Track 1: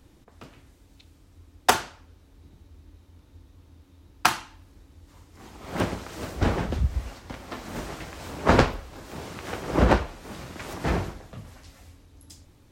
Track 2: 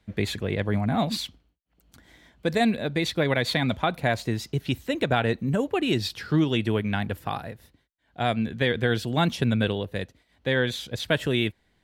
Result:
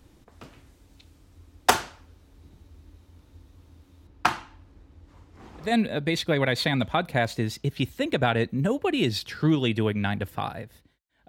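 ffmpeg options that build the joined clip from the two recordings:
-filter_complex "[0:a]asettb=1/sr,asplit=3[s0][s1][s2];[s0]atrim=end=4.074[s3];[s1]atrim=start=4.07:end=5.76,asetpts=PTS-STARTPTS,afade=t=in:d=0.004:c=qsin,afade=t=out:st=1.686:d=0.004:c=qsin,lowpass=f=2200:p=1[s4];[s2]atrim=start=5.756[s5];[s3][s4]acrossfade=d=0.004:c1=hsin:c2=qsin[s6];[s6][s5]acrossfade=d=0.004:c1=qsin:c2=hsin,apad=whole_dur=11.28,atrim=end=11.28,atrim=end=5.76,asetpts=PTS-STARTPTS[s7];[1:a]atrim=start=2.47:end=8.17,asetpts=PTS-STARTPTS[s8];[s7][s8]acrossfade=d=0.18:c1=tri:c2=tri"

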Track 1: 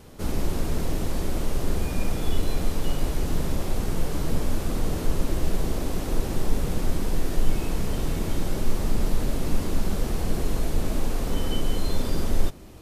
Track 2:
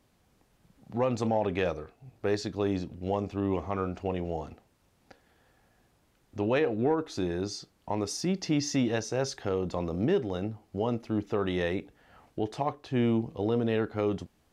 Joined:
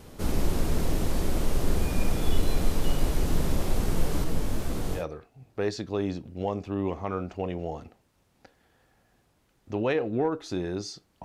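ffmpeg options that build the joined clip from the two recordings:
-filter_complex "[0:a]asettb=1/sr,asplit=3[s0][s1][s2];[s0]atrim=end=4.244[s3];[s1]atrim=start=4.24:end=5.05,asetpts=PTS-STARTPTS,afade=t=in:d=0.004:c=qsin,afade=t=out:st=0.806:d=0.004:c=qsin,flanger=delay=16:depth=6:speed=2.2[s4];[s2]atrim=start=5.046[s5];[s3][s4]acrossfade=d=0.004:c1=hsin:c2=qsin[s6];[s6][s5]acrossfade=d=0.004:c1=qsin:c2=hsin,apad=whole_dur=11.24,atrim=end=11.24,atrim=end=5.05,asetpts=PTS-STARTPTS[s7];[1:a]atrim=start=1.59:end=7.9,asetpts=PTS-STARTPTS[s8];[s7][s8]acrossfade=d=0.12:c1=tri:c2=tri"

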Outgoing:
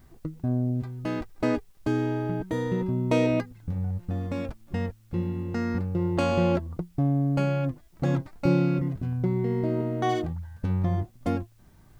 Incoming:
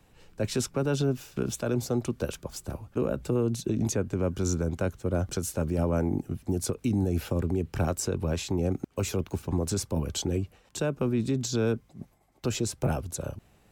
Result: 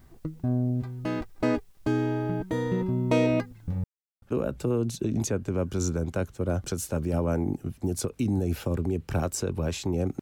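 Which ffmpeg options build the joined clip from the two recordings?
-filter_complex "[0:a]apad=whole_dur=10.21,atrim=end=10.21,asplit=2[s0][s1];[s0]atrim=end=3.84,asetpts=PTS-STARTPTS,afade=t=out:st=3.836:d=0.004:c=hsin[s2];[s1]atrim=start=3.84:end=4.22,asetpts=PTS-STARTPTS,volume=0[s3];[1:a]atrim=start=2.87:end=8.86,asetpts=PTS-STARTPTS,afade=t=in:d=0.004:c=hsin[s4];[s2][s3][s4]concat=n=3:v=0:a=1"

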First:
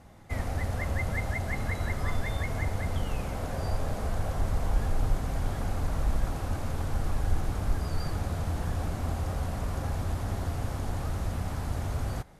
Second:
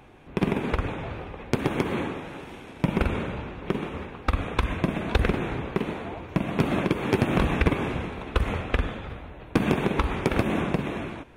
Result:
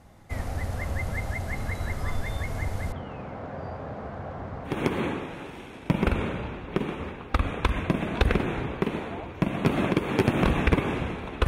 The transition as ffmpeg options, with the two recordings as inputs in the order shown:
-filter_complex "[0:a]asettb=1/sr,asplit=3[s0][s1][s2];[s0]atrim=end=2.924[s3];[s1]atrim=start=2.92:end=4.8,asetpts=PTS-STARTPTS,afade=t=in:d=0.004:c=qsin,afade=t=out:st=1.876:d=0.004:c=qsin,highpass=130,lowpass=2000[s4];[s2]atrim=start=4.796[s5];[s3][s4]acrossfade=d=0.004:c1=hsin:c2=qsin[s6];[s6][s5]acrossfade=d=0.004:c1=qsin:c2=hsin,apad=whole_dur=11.47,atrim=end=11.47,atrim=end=4.8,asetpts=PTS-STARTPTS[s7];[1:a]atrim=start=1.56:end=8.41,asetpts=PTS-STARTPTS[s8];[s7][s8]acrossfade=d=0.18:c1=tri:c2=tri"

